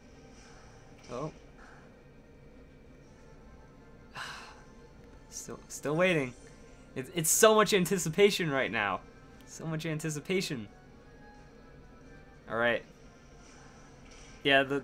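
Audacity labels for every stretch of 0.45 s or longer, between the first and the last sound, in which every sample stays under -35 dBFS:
1.280000	4.160000	silence
4.340000	5.360000	silence
6.290000	6.970000	silence
8.960000	9.550000	silence
10.620000	12.490000	silence
12.780000	14.450000	silence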